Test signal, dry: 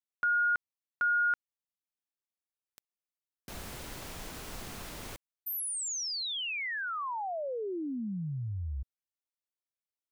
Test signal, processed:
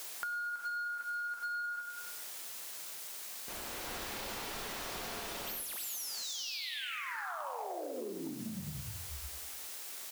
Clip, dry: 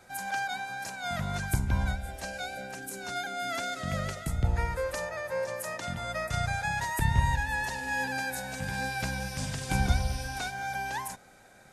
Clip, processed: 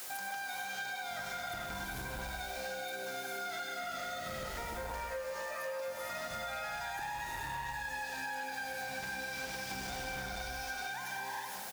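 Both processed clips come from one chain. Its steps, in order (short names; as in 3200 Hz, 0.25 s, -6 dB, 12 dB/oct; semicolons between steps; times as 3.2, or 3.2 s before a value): median filter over 5 samples; dynamic EQ 100 Hz, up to -6 dB, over -41 dBFS, Q 1; non-linear reverb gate 0.49 s rising, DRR -5.5 dB; soft clip -19.5 dBFS; feedback echo 98 ms, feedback 43%, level -9.5 dB; requantised 8-bit, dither triangular; tone controls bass -12 dB, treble +3 dB; compressor 12:1, threshold -38 dBFS; gain +1 dB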